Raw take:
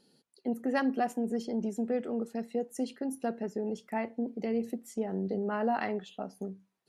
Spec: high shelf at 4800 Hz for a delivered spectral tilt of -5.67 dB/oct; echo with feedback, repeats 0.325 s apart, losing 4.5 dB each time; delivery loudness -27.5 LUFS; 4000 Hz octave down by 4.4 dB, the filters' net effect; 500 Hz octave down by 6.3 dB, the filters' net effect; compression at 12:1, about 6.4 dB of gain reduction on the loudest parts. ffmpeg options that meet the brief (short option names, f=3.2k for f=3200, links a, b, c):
-af "equalizer=f=500:t=o:g=-7.5,equalizer=f=4k:t=o:g=-8.5,highshelf=f=4.8k:g=5,acompressor=threshold=-33dB:ratio=12,aecho=1:1:325|650|975|1300|1625|1950|2275|2600|2925:0.596|0.357|0.214|0.129|0.0772|0.0463|0.0278|0.0167|0.01,volume=10.5dB"